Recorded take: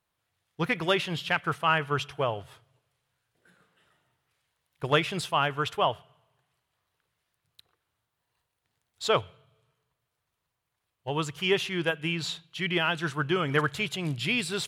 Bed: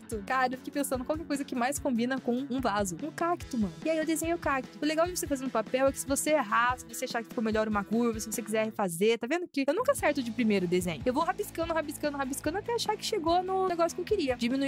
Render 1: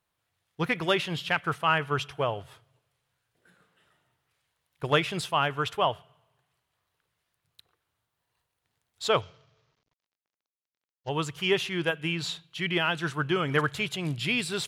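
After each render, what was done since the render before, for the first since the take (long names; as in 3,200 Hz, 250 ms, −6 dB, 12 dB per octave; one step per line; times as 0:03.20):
0:09.21–0:11.09: variable-slope delta modulation 32 kbit/s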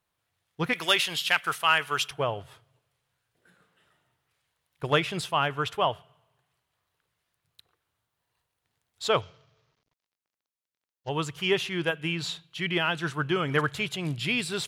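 0:00.73–0:02.11: spectral tilt +4 dB per octave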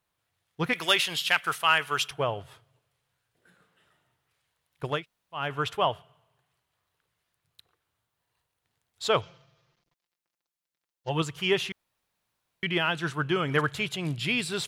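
0:04.94–0:05.42: fill with room tone, crossfade 0.24 s
0:09.23–0:11.22: comb filter 5.8 ms
0:11.72–0:12.63: fill with room tone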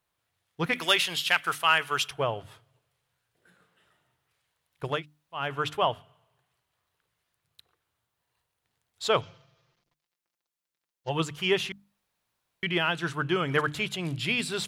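mains-hum notches 50/100/150/200/250/300 Hz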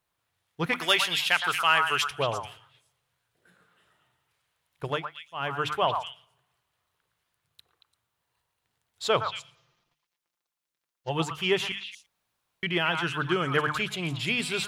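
echo through a band-pass that steps 114 ms, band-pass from 1,100 Hz, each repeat 1.4 octaves, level −2.5 dB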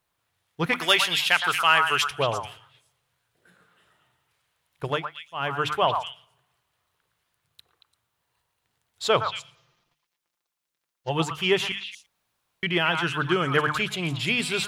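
level +3 dB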